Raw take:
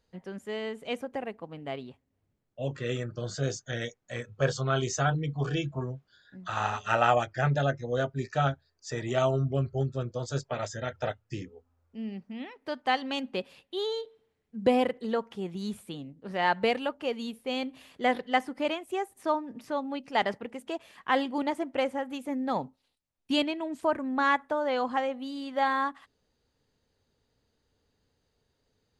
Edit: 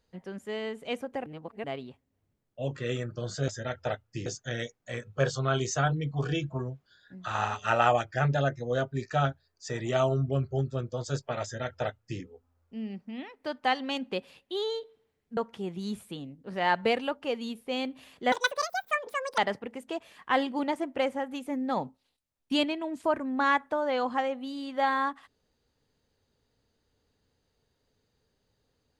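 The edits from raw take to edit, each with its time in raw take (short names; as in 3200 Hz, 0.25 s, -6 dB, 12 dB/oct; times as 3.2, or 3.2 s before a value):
1.26–1.64 reverse
10.65–11.43 copy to 3.48
14.59–15.15 cut
18.1–20.17 speed 195%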